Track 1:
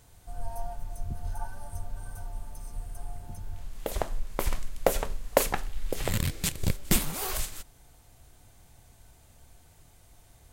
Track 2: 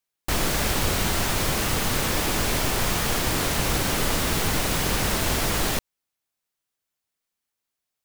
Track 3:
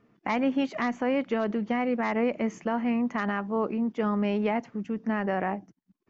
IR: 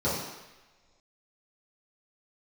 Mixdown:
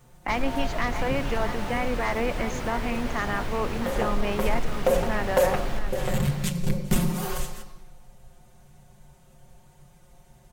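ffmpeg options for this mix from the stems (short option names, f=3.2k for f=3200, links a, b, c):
-filter_complex "[0:a]aecho=1:1:5.6:0.89,volume=-0.5dB,asplit=2[a][b];[b]volume=-16dB[c];[1:a]highshelf=f=4.8k:g=-11,volume=-8.5dB,asplit=2[d][e];[e]volume=-4.5dB[f];[2:a]aemphasis=mode=production:type=riaa,volume=2dB,asplit=2[g][h];[h]volume=-10.5dB[i];[3:a]atrim=start_sample=2205[j];[c][j]afir=irnorm=-1:irlink=0[k];[f][i]amix=inputs=2:normalize=0,aecho=0:1:661:1[l];[a][d][g][k][l]amix=inputs=5:normalize=0,highshelf=f=3.7k:g=-6,asoftclip=type=tanh:threshold=-12dB"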